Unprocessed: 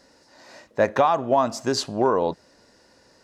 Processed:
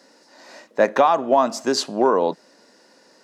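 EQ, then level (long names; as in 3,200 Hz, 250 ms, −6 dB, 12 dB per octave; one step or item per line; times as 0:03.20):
high-pass filter 190 Hz 24 dB per octave
+3.0 dB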